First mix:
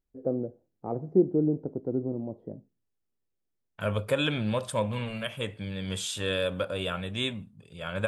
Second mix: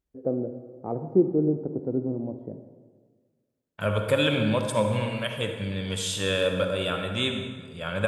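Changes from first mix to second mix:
second voice: add high-pass filter 50 Hz
reverb: on, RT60 1.6 s

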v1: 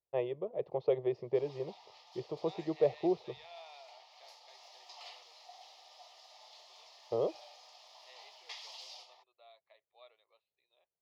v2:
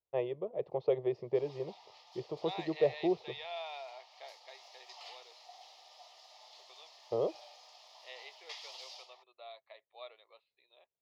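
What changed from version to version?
second voice +10.0 dB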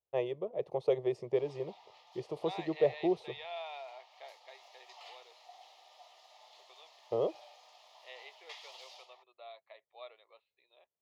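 first voice: remove high-frequency loss of the air 280 metres
master: add parametric band 5,100 Hz −8 dB 0.66 octaves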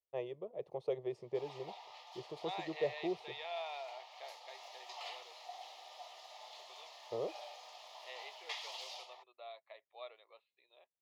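first voice −7.5 dB
background +6.0 dB

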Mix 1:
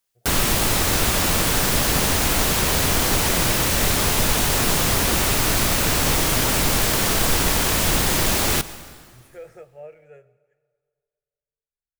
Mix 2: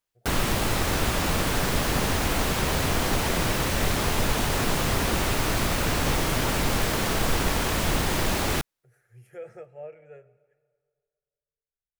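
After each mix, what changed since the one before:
background: send off
master: add high-shelf EQ 4,000 Hz −9 dB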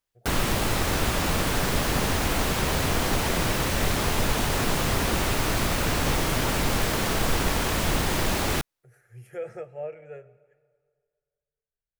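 speech +5.5 dB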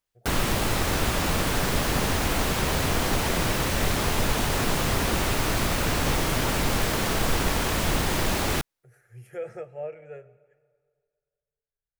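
nothing changed

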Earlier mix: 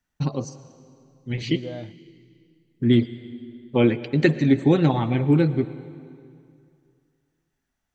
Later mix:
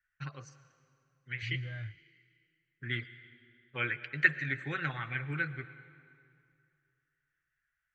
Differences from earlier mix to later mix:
first voice: add high-pass filter 320 Hz 12 dB per octave
master: add drawn EQ curve 140 Hz 0 dB, 200 Hz −24 dB, 910 Hz −20 dB, 1,500 Hz +6 dB, 2,100 Hz +1 dB, 4,100 Hz −15 dB

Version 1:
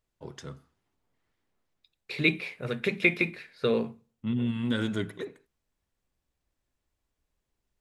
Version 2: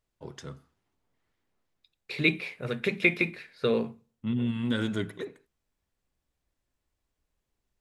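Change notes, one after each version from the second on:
nothing changed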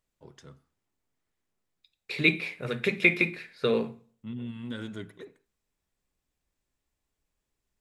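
first voice −8.5 dB
second voice: send +9.0 dB

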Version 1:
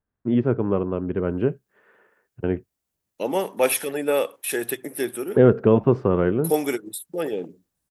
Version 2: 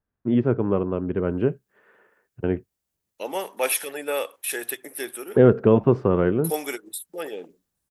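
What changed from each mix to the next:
second voice: add high-pass filter 830 Hz 6 dB per octave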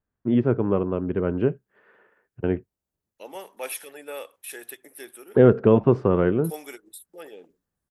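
second voice −9.5 dB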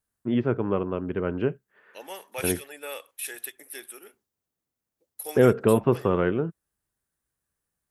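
second voice: entry −1.25 s
master: add tilt shelving filter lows −4.5 dB, about 1,100 Hz

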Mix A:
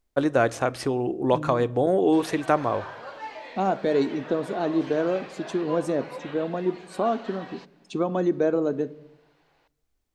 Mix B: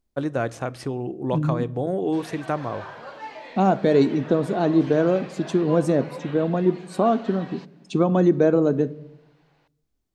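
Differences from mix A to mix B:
first voice −5.5 dB
second voice +3.5 dB
master: add parametric band 150 Hz +8 dB 1.3 octaves

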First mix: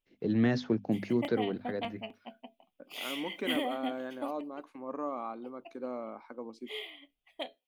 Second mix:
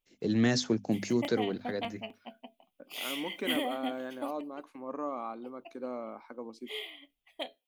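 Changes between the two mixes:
first voice: remove high-frequency loss of the air 240 metres
master: add high-shelf EQ 5,000 Hz +6 dB

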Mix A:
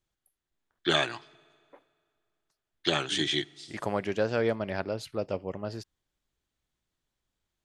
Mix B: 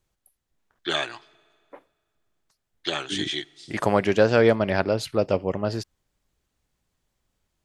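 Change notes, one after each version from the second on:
first voice: add parametric band 150 Hz −7 dB 1.9 octaves
second voice +9.5 dB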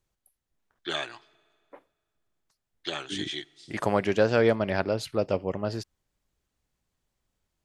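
first voice −5.5 dB
second voice −4.0 dB

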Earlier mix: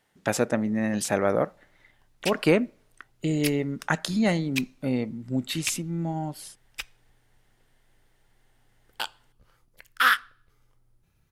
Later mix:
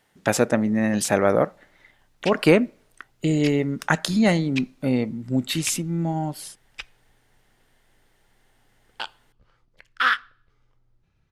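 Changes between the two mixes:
speech +4.5 dB
background: add low-pass filter 4,800 Hz 12 dB per octave

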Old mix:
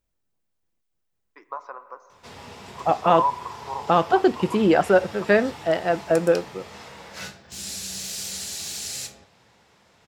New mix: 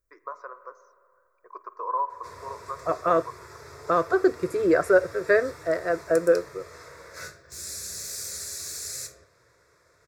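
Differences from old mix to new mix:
first voice: entry −1.25 s
master: add phaser with its sweep stopped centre 810 Hz, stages 6

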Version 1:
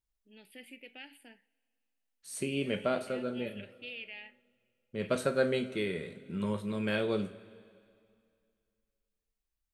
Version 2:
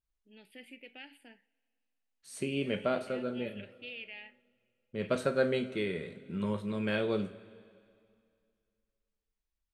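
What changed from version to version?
master: add high-shelf EQ 8,800 Hz −11 dB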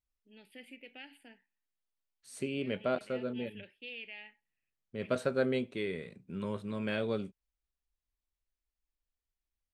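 reverb: off

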